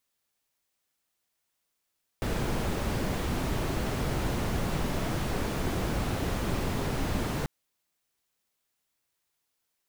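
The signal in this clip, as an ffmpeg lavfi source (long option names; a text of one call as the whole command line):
ffmpeg -f lavfi -i "anoisesrc=color=brown:amplitude=0.166:duration=5.24:sample_rate=44100:seed=1" out.wav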